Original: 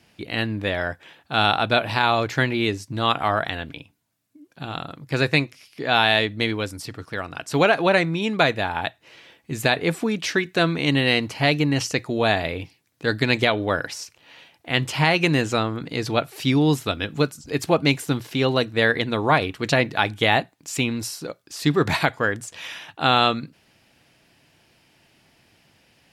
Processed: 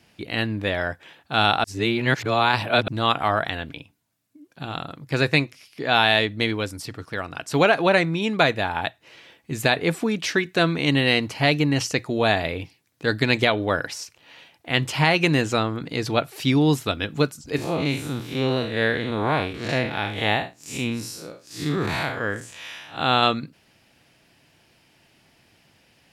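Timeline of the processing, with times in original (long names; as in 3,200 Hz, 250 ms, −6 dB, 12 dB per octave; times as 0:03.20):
0:01.64–0:02.88: reverse
0:17.56–0:23.23: spectrum smeared in time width 132 ms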